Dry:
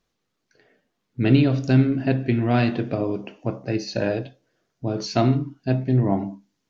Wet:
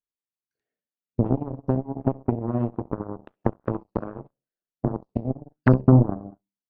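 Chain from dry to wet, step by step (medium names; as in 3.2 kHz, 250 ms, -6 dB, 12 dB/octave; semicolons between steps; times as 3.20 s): compression 16:1, threshold -25 dBFS, peak gain reduction 16 dB; low-pass that closes with the level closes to 360 Hz, closed at -28.5 dBFS; 4.00–4.97 s: frequency shift +13 Hz; 5.00–5.32 s: spectral replace 330–1800 Hz after; 5.55–6.06 s: bass shelf 280 Hz +7 dB; feedback delay 66 ms, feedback 34%, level -11 dB; Chebyshev shaper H 4 -34 dB, 5 -9 dB, 6 -36 dB, 7 -8 dB, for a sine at -11.5 dBFS; trim +8 dB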